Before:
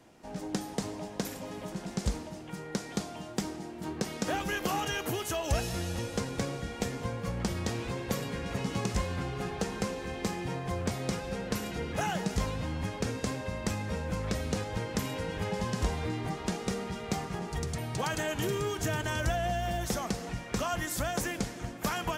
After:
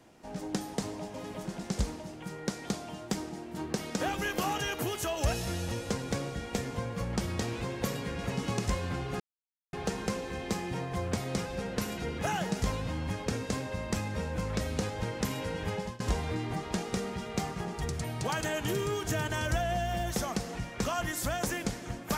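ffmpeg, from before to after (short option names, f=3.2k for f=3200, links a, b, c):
-filter_complex "[0:a]asplit=4[a][b][c][d];[a]atrim=end=1.142[e];[b]atrim=start=1.408:end=9.47,asetpts=PTS-STARTPTS,afade=t=out:st=8.058:d=0.004:c=hsin,apad=pad_dur=0.53[f];[c]atrim=start=9.47:end=15.74,asetpts=PTS-STARTPTS,afade=t=in:d=0.004:c=hsin,afade=t=out:st=5.91:d=0.36:c=qsin:silence=0.0707946[g];[d]atrim=start=15.74,asetpts=PTS-STARTPTS,afade=t=in:d=0.004:c=hsin:silence=0.0707946[h];[f][g][h]concat=n=3:v=0:a=1[i];[e][i]acrossfade=d=0.004:c1=hsin:c2=hsin"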